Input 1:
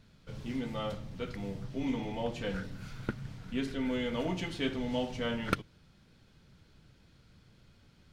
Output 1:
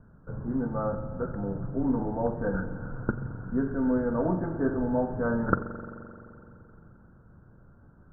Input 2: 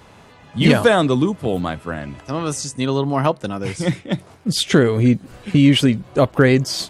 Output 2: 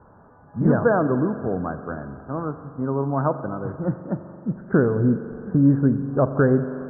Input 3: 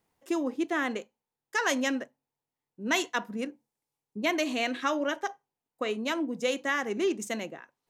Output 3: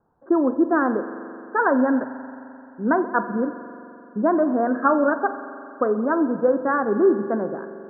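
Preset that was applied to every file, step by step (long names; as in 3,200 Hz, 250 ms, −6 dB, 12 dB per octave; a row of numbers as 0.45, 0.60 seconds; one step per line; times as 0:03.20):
Butterworth low-pass 1,600 Hz 96 dB per octave
spring reverb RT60 2.9 s, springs 43 ms, chirp 80 ms, DRR 10.5 dB
normalise the peak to −6 dBFS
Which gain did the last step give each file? +6.5, −4.5, +10.5 decibels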